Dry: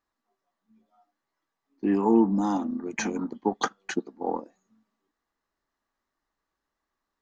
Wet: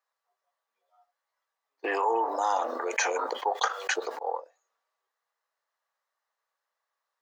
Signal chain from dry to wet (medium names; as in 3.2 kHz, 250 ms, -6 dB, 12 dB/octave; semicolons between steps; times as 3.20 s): elliptic high-pass 500 Hz, stop band 60 dB; 1.84–4.19 s: level flattener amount 70%